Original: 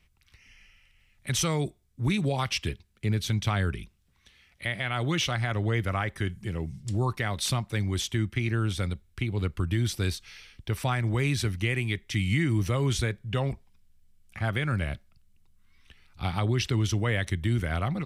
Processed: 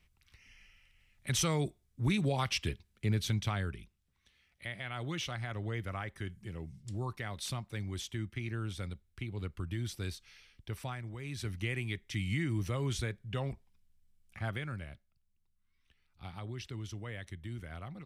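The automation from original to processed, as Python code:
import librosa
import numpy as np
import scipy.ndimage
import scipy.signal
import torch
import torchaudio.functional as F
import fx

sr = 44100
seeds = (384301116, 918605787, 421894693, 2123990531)

y = fx.gain(x, sr, db=fx.line((3.27, -4.0), (3.77, -10.5), (10.77, -10.5), (11.19, -18.0), (11.53, -8.0), (14.48, -8.0), (14.9, -16.0)))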